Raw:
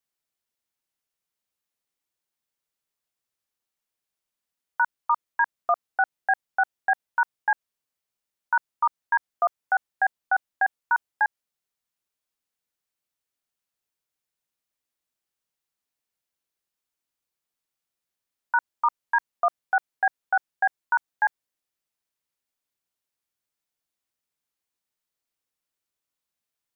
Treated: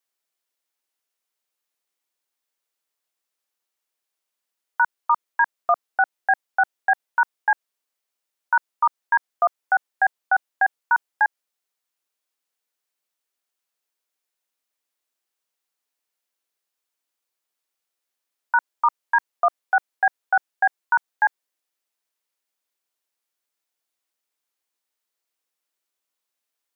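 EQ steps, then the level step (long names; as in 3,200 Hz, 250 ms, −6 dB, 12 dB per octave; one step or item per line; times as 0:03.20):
high-pass filter 330 Hz 12 dB per octave
+3.5 dB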